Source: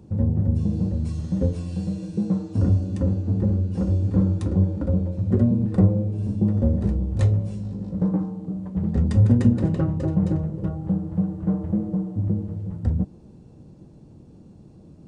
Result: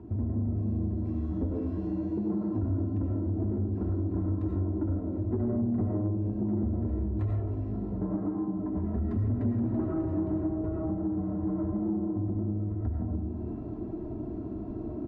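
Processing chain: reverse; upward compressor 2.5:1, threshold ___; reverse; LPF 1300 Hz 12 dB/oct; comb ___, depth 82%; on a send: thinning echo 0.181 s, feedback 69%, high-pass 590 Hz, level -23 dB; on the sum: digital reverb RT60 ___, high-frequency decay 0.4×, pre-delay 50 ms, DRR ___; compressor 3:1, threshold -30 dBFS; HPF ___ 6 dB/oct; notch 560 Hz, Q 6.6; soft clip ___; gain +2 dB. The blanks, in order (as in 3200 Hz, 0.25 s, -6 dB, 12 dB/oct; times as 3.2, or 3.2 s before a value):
-32 dBFS, 3 ms, 0.78 s, -2.5 dB, 64 Hz, -22 dBFS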